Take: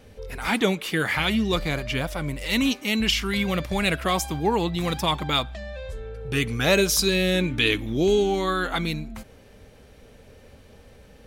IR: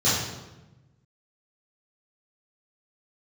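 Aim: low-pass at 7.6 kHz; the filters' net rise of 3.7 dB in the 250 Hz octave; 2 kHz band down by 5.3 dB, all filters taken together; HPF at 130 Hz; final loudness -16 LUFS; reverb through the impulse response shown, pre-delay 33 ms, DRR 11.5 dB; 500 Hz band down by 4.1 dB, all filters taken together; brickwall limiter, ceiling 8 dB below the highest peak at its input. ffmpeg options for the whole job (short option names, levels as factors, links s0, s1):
-filter_complex "[0:a]highpass=130,lowpass=7600,equalizer=f=250:t=o:g=8,equalizer=f=500:t=o:g=-9,equalizer=f=2000:t=o:g=-6.5,alimiter=limit=0.126:level=0:latency=1,asplit=2[s0][s1];[1:a]atrim=start_sample=2205,adelay=33[s2];[s1][s2]afir=irnorm=-1:irlink=0,volume=0.0422[s3];[s0][s3]amix=inputs=2:normalize=0,volume=3.55"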